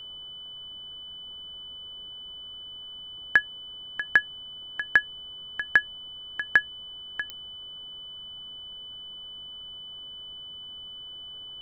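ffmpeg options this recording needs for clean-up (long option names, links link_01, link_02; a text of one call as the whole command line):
ffmpeg -i in.wav -af "adeclick=threshold=4,bandreject=frequency=3000:width=30,afftdn=noise_reduction=30:noise_floor=-42" out.wav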